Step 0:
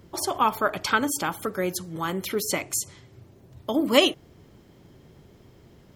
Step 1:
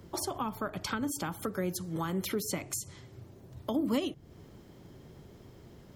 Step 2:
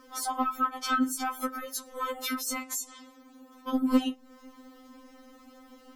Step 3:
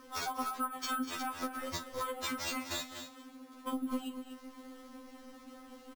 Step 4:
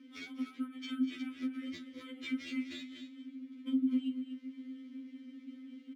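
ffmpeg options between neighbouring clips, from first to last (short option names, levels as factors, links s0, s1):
-filter_complex "[0:a]equalizer=f=2500:w=1.5:g=-2.5,acrossover=split=240[s0][s1];[s1]acompressor=threshold=0.0224:ratio=10[s2];[s0][s2]amix=inputs=2:normalize=0"
-af "asoftclip=type=tanh:threshold=0.0596,equalizer=f=1200:t=o:w=0.46:g=9,afftfilt=real='re*3.46*eq(mod(b,12),0)':imag='im*3.46*eq(mod(b,12),0)':win_size=2048:overlap=0.75,volume=2"
-af "acompressor=threshold=0.0178:ratio=4,acrusher=samples=4:mix=1:aa=0.000001,aecho=1:1:41|201|244:0.2|0.141|0.316"
-filter_complex "[0:a]asplit=3[s0][s1][s2];[s0]bandpass=f=270:t=q:w=8,volume=1[s3];[s1]bandpass=f=2290:t=q:w=8,volume=0.501[s4];[s2]bandpass=f=3010:t=q:w=8,volume=0.355[s5];[s3][s4][s5]amix=inputs=3:normalize=0,volume=2.37"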